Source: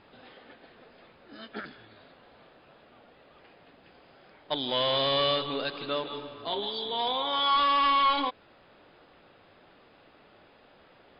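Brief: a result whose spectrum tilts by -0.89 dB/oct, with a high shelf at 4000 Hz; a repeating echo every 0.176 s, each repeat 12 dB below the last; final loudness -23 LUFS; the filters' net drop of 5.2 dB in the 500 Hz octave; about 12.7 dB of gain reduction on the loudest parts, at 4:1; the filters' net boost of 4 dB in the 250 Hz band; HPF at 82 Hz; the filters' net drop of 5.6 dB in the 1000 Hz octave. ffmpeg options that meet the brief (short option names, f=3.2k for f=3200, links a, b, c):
-af "highpass=82,equalizer=f=250:t=o:g=6.5,equalizer=f=500:t=o:g=-6,equalizer=f=1k:t=o:g=-6,highshelf=f=4k:g=7.5,acompressor=threshold=-39dB:ratio=4,aecho=1:1:176|352|528:0.251|0.0628|0.0157,volume=16dB"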